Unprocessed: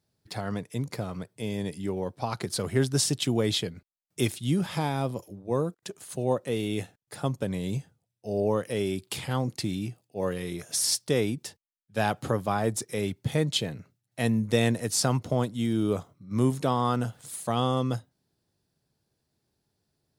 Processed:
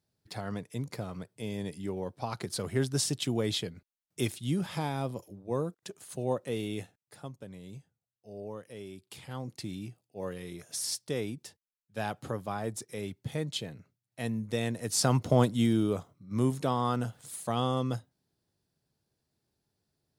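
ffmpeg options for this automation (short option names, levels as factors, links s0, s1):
-af "volume=5.62,afade=t=out:st=6.59:d=0.73:silence=0.281838,afade=t=in:st=9.02:d=0.7:silence=0.421697,afade=t=in:st=14.73:d=0.77:silence=0.251189,afade=t=out:st=15.5:d=0.41:silence=0.421697"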